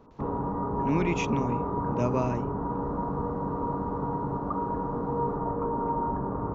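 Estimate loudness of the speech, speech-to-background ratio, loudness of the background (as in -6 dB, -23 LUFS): -31.5 LUFS, -1.0 dB, -30.5 LUFS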